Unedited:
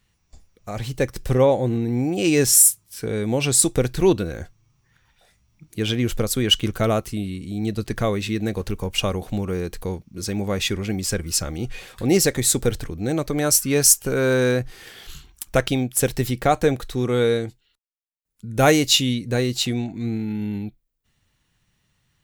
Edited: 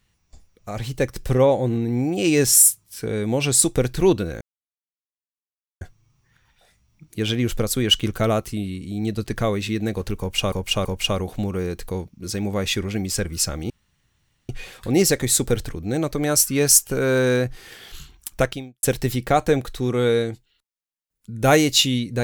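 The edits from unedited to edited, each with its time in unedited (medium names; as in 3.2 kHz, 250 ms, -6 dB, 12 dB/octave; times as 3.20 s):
4.41 s: insert silence 1.40 s
8.79–9.12 s: loop, 3 plays
11.64 s: insert room tone 0.79 s
15.55–15.98 s: fade out quadratic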